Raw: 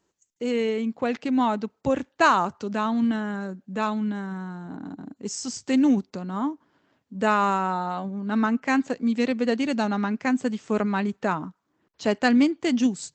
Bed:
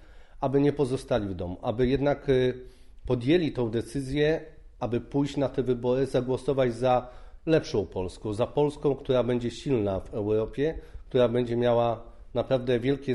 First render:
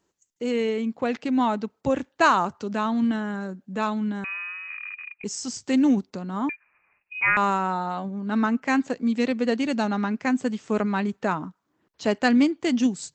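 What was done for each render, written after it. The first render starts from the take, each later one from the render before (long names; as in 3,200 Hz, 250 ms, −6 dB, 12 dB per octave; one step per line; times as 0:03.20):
0:04.24–0:05.24: voice inversion scrambler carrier 2,700 Hz
0:06.49–0:07.37: voice inversion scrambler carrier 2,700 Hz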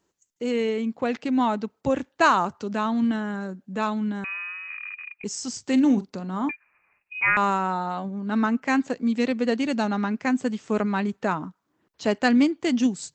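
0:05.67–0:06.51: double-tracking delay 43 ms −14 dB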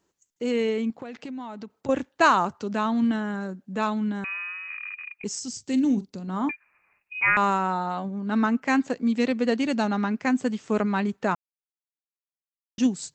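0:00.90–0:01.89: downward compressor 8 to 1, threshold −33 dBFS
0:05.39–0:06.28: parametric band 1,100 Hz −11 dB 2.7 octaves
0:11.35–0:12.78: silence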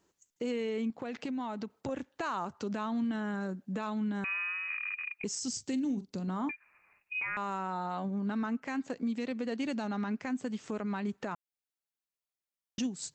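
downward compressor 6 to 1, threshold −30 dBFS, peak gain reduction 15.5 dB
brickwall limiter −25.5 dBFS, peak gain reduction 7 dB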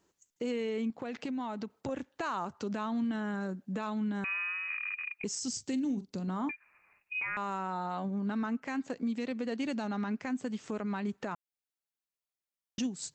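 no processing that can be heard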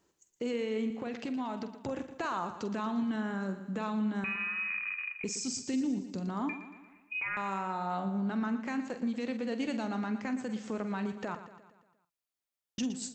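double-tracking delay 46 ms −11.5 dB
on a send: repeating echo 117 ms, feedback 54%, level −12 dB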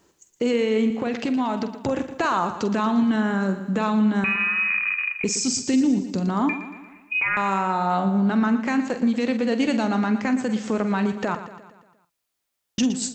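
level +12 dB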